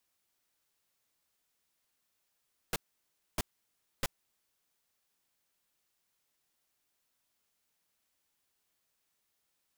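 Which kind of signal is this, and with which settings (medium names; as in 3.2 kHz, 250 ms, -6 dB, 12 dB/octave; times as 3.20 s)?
noise bursts pink, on 0.03 s, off 0.62 s, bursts 3, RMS -31 dBFS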